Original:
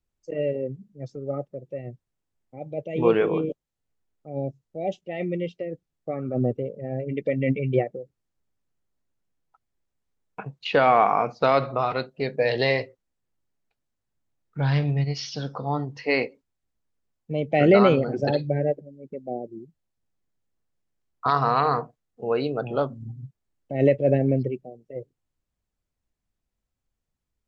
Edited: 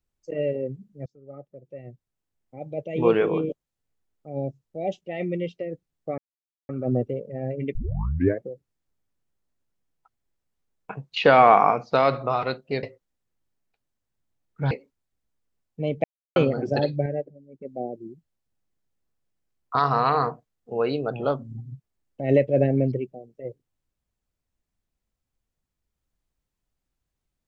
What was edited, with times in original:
0:01.06–0:02.62: fade in, from −23 dB
0:06.18: splice in silence 0.51 s
0:07.24: tape start 0.68 s
0:10.61–0:11.20: clip gain +3.5 dB
0:12.32–0:12.80: remove
0:14.68–0:16.22: remove
0:17.55–0:17.87: silence
0:18.57–0:19.16: clip gain −5 dB

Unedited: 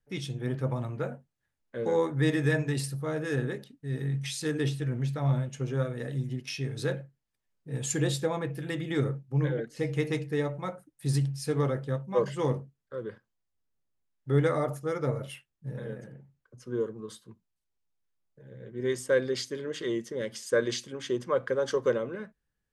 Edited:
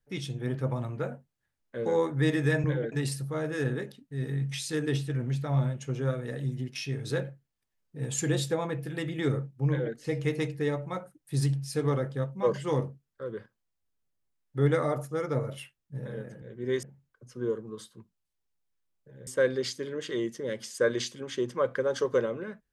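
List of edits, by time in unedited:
0:09.39–0:09.67: duplicate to 0:02.64
0:18.58–0:18.99: move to 0:16.14

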